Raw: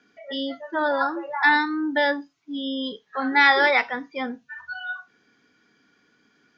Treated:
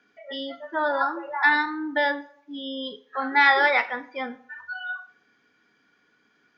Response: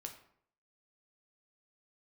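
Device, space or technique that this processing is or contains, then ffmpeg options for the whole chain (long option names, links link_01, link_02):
filtered reverb send: -filter_complex "[0:a]asplit=2[link_01][link_02];[link_02]highpass=420,lowpass=3800[link_03];[1:a]atrim=start_sample=2205[link_04];[link_03][link_04]afir=irnorm=-1:irlink=0,volume=1dB[link_05];[link_01][link_05]amix=inputs=2:normalize=0,volume=-5dB"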